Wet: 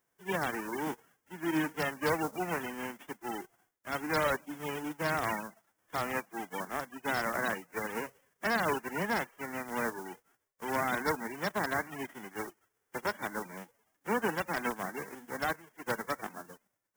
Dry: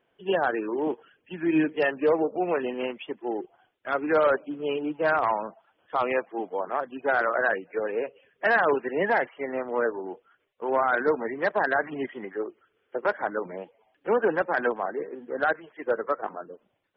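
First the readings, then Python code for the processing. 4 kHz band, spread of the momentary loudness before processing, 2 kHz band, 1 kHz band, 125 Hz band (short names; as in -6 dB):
+0.5 dB, 13 LU, -6.5 dB, -7.0 dB, +2.0 dB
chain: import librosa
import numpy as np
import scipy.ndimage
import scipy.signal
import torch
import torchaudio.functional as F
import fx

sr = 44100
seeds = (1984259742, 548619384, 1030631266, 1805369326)

y = fx.envelope_flatten(x, sr, power=0.3)
y = fx.band_shelf(y, sr, hz=3300.0, db=-9.5, octaves=1.1)
y = y * librosa.db_to_amplitude(-7.5)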